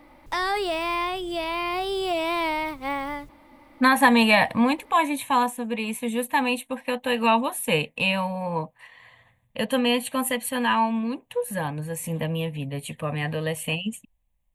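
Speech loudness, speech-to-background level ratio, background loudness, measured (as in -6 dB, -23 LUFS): -24.0 LUFS, 3.0 dB, -27.0 LUFS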